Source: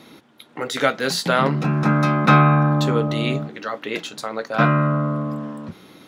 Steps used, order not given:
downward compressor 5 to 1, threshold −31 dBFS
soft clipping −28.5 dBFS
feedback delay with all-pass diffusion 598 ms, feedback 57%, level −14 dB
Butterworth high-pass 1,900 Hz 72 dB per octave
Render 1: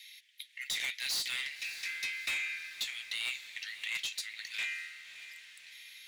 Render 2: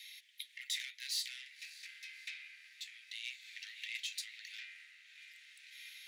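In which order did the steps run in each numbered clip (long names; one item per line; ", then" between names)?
Butterworth high-pass, then soft clipping, then feedback delay with all-pass diffusion, then downward compressor
feedback delay with all-pass diffusion, then downward compressor, then soft clipping, then Butterworth high-pass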